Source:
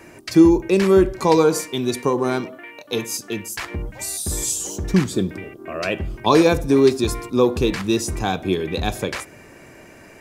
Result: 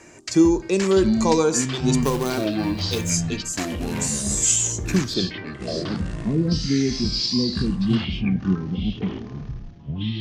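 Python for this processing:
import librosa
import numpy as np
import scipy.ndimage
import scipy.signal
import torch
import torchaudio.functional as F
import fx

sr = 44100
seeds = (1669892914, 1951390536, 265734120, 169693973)

y = fx.filter_sweep_lowpass(x, sr, from_hz=7100.0, to_hz=200.0, start_s=5.0, end_s=5.98, q=3.9)
y = fx.quant_companded(y, sr, bits=4, at=(2.02, 3.1))
y = fx.echo_pitch(y, sr, ms=497, semitones=-7, count=3, db_per_echo=-6.0)
y = F.gain(torch.from_numpy(y), -4.0).numpy()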